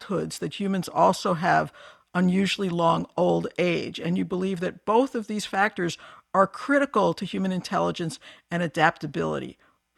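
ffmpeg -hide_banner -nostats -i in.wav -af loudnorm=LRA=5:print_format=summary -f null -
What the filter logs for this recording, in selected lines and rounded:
Input Integrated:    -25.6 LUFS
Input True Peak:      -5.2 dBTP
Input LRA:             3.7 LU
Input Threshold:     -35.8 LUFS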